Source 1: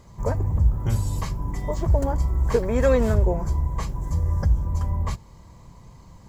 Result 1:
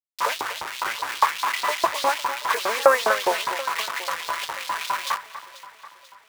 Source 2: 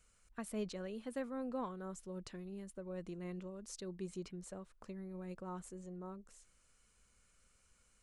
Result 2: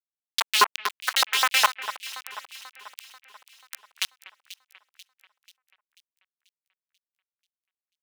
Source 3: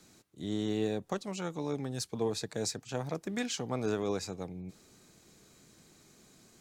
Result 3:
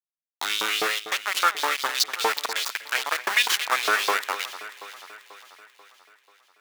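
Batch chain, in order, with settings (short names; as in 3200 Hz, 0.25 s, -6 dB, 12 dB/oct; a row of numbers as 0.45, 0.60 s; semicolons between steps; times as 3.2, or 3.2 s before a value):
HPF 120 Hz 6 dB/oct; treble ducked by the level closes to 1400 Hz, closed at -25.5 dBFS; notches 60/120/180/240 Hz; dynamic EQ 420 Hz, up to +4 dB, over -38 dBFS, Q 0.8; in parallel at -1 dB: compressor 4:1, threshold -33 dBFS; on the sum: sample gate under -30.5 dBFS; LFO high-pass saw up 4.9 Hz 920–4400 Hz; on a send: echo with dull and thin repeats by turns 0.244 s, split 2400 Hz, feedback 71%, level -12 dB; on the sum: match loudness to -24 LUFS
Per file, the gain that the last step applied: +10.0, +21.0, +12.0 dB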